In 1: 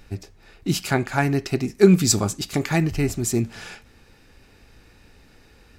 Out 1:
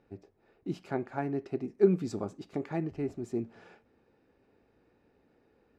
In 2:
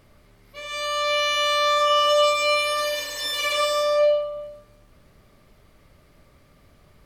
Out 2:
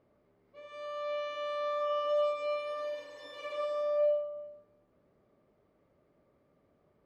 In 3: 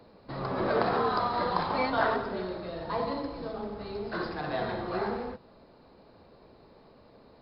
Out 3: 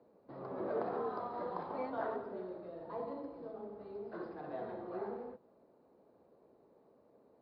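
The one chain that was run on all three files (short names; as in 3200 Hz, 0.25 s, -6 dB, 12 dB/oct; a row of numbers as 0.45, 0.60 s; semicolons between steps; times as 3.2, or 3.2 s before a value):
band-pass 430 Hz, Q 0.89; gain -8 dB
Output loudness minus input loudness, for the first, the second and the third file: -12.0, -12.5, -11.0 LU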